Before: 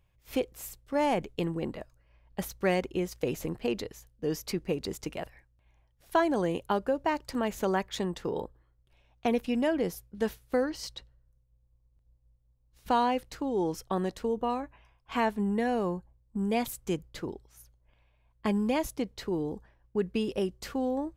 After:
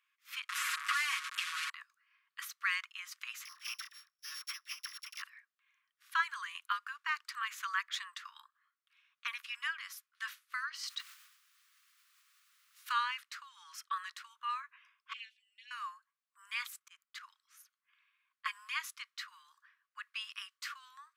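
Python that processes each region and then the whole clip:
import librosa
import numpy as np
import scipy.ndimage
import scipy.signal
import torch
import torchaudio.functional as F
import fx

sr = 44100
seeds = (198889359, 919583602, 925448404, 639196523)

y = fx.chain(x, sr, fx.delta_mod(bps=64000, step_db=-31.5),
    fx.comb(ms=6.3, depth=0.91),
    fx.band_squash(depth_pct=70), at=(0.49, 1.7))
y = fx.chain(y, sr, fx.sample_sort(block=8),
    fx.dispersion(late='lows', ms=53.0, hz=820.0), at=(3.45, 5.22))
y = fx.high_shelf(y, sr, hz=6300.0, db=11.5, at=(10.87, 12.91), fade=0.02)
y = fx.dmg_noise_colour(y, sr, seeds[0], colour='white', level_db=-67.0, at=(10.87, 12.91), fade=0.02)
y = fx.sustainer(y, sr, db_per_s=63.0, at=(10.87, 12.91), fade=0.02)
y = fx.chain(y, sr, fx.ellip_highpass(hz=2700.0, order=4, stop_db=70),
    fx.spacing_loss(db_at_10k=26),
    fx.comb(ms=4.0, depth=0.8), at=(15.13, 15.71))
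y = fx.chain(y, sr, fx.auto_swell(attack_ms=183.0),
    fx.level_steps(step_db=11), at=(16.64, 17.21))
y = scipy.signal.sosfilt(scipy.signal.butter(16, 1100.0, 'highpass', fs=sr, output='sos'), y)
y = fx.high_shelf(y, sr, hz=4200.0, db=-11.0)
y = y * 10.0 ** (4.5 / 20.0)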